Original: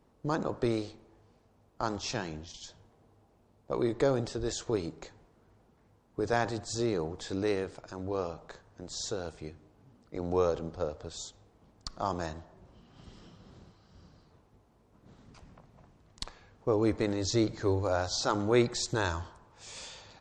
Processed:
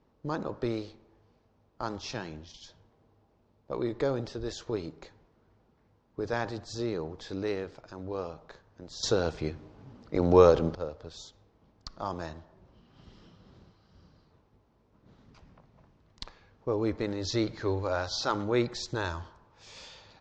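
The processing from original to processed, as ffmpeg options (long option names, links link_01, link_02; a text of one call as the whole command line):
ffmpeg -i in.wav -filter_complex "[0:a]asettb=1/sr,asplit=3[link_01][link_02][link_03];[link_01]atrim=end=17.234[link_04];[link_02]atrim=start=17.23:end=18.44,asetpts=PTS-STARTPTS,afade=type=in:duration=0.004:curve=qsin,afade=type=out:start_time=1.206:duration=0.004:curve=qsin,equalizer=frequency=2200:width=0.46:gain=4.5[link_05];[link_03]atrim=start=18.436[link_06];[link_04][link_05]acrossfade=duration=0.004:curve1=hsin:curve2=qsin[link_07];[link_07][link_06]acrossfade=duration=0.004:curve1=qsin:curve2=hsin,asplit=3[link_08][link_09][link_10];[link_08]atrim=end=9.032[link_11];[link_09]atrim=start=9.028:end=10.752,asetpts=PTS-STARTPTS,volume=11.5dB[link_12];[link_10]atrim=start=10.748[link_13];[link_11][link_12]acrossfade=duration=0.004:curve1=hsin:curve2=hsin[link_14];[link_14][link_13]acrossfade=duration=0.004:curve1=hsin:curve2=hsin,lowpass=frequency=5800:width=0.5412,lowpass=frequency=5800:width=1.3066,bandreject=frequency=720:width=22,volume=-2dB" out.wav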